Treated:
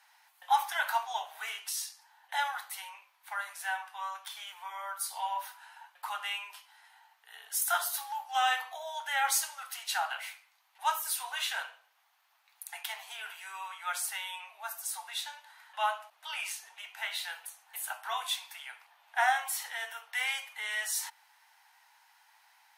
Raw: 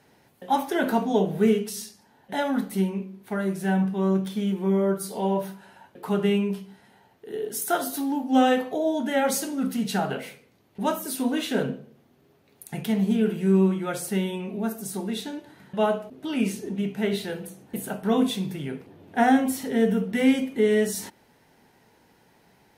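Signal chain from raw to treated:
Butterworth high-pass 810 Hz 48 dB per octave

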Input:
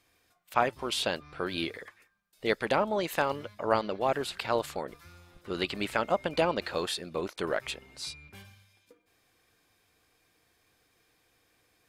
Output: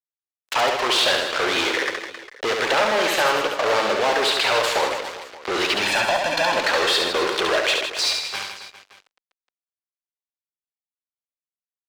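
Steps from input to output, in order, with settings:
fuzz pedal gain 44 dB, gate −46 dBFS
0:05.83–0:06.52: comb filter 1.2 ms, depth 90%
downward compressor 3 to 1, threshold −21 dBFS, peak gain reduction 8.5 dB
three-way crossover with the lows and the highs turned down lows −20 dB, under 400 Hz, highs −15 dB, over 6,600 Hz
reverse bouncing-ball delay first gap 70 ms, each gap 1.25×, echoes 5
level +1.5 dB

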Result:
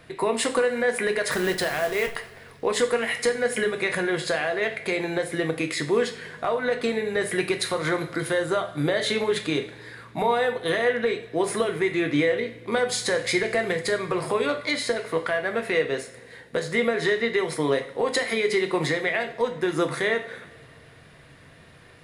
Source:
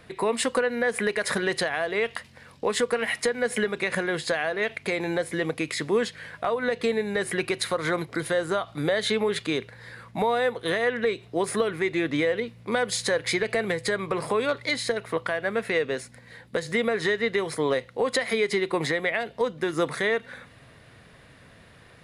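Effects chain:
0:01.31–0:02.15: hold until the input has moved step −32 dBFS
coupled-rooms reverb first 0.4 s, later 2.1 s, from −18 dB, DRR 4.5 dB

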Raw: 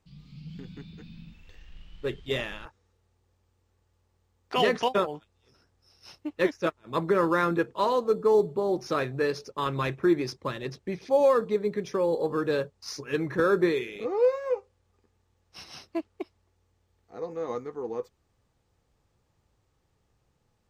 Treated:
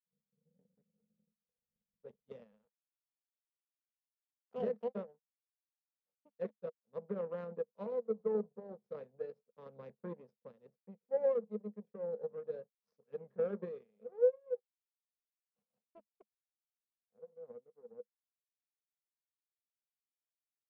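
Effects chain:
power curve on the samples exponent 2
pair of resonant band-passes 320 Hz, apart 1.2 octaves

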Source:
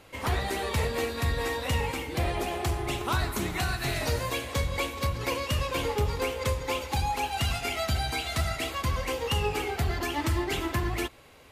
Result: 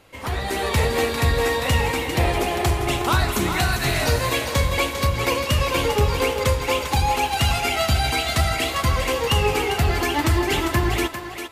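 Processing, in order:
automatic gain control gain up to 8 dB
on a send: feedback echo with a high-pass in the loop 399 ms, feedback 24%, high-pass 380 Hz, level −7 dB

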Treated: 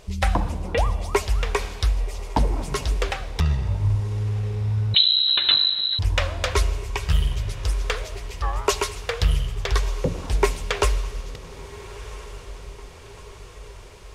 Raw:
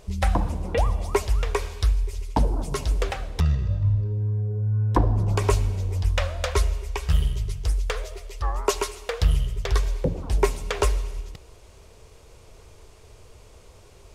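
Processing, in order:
parametric band 2,800 Hz +5 dB 2.7 octaves
feedback delay with all-pass diffusion 1,355 ms, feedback 58%, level −16 dB
0:04.94–0:05.99: voice inversion scrambler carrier 4,000 Hz

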